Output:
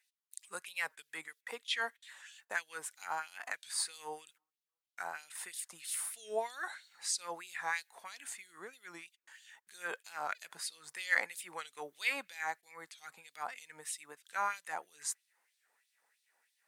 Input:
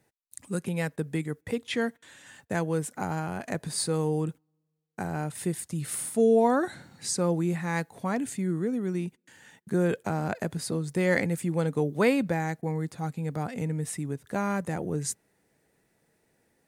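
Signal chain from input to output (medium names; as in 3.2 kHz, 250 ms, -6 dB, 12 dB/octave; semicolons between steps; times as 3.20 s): LFO high-pass sine 3.1 Hz 900–3800 Hz; warped record 45 rpm, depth 100 cents; trim -5 dB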